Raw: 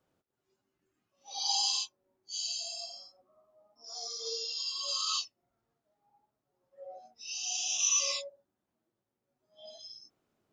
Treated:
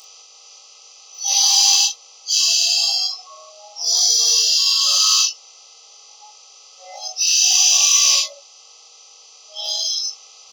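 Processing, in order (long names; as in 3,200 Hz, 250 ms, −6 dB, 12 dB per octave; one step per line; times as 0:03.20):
compressor on every frequency bin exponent 0.2
high-shelf EQ 2,500 Hz −6 dB
in parallel at −4 dB: hard clipping −27.5 dBFS, distortion −12 dB
on the sum: tilt shelving filter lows −8 dB, about 1,200 Hz
on a send: ambience of single reflections 19 ms −4.5 dB, 40 ms −8 dB
on the sum: noise reduction from a noise print of the clip's start 20 dB
level +2.5 dB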